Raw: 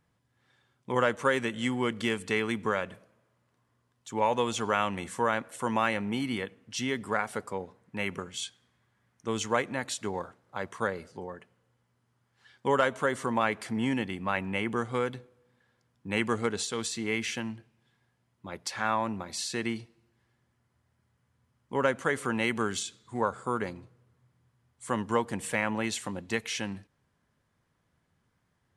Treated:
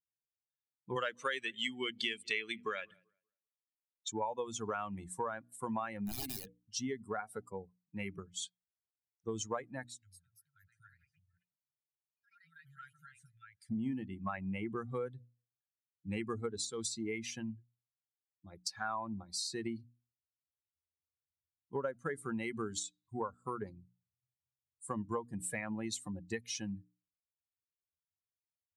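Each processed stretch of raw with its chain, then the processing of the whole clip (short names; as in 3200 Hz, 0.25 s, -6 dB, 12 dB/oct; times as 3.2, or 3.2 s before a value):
0.96–4.12 weighting filter D + darkening echo 0.192 s, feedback 43%, low-pass 3800 Hz, level -19 dB
6.05–6.6 notches 60/120/180/240/300/360/420/480/540/600 Hz + wrapped overs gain 27.5 dB
9.87–13.7 echoes that change speed 0.236 s, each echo +3 st, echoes 3, each echo -6 dB + compressor 1.5:1, threshold -52 dBFS + brick-wall FIR band-stop 180–1300 Hz
whole clip: per-bin expansion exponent 2; notches 60/120/180/240/300 Hz; compressor 4:1, threshold -40 dBFS; gain +4.5 dB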